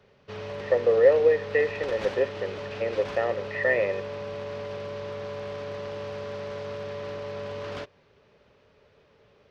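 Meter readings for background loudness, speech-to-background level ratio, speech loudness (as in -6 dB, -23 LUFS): -36.0 LUFS, 11.5 dB, -24.5 LUFS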